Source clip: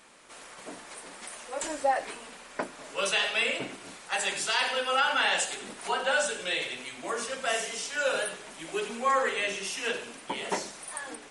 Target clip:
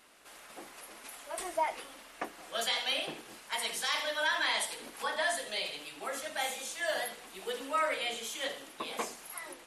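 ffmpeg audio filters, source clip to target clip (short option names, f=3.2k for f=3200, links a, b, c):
-af "asetrate=51597,aresample=44100,volume=-5dB"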